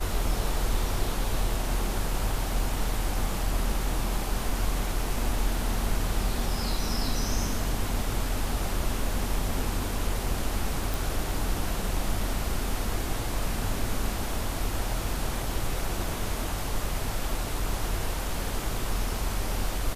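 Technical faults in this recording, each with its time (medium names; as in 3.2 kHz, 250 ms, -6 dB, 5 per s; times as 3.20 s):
10.94 s: pop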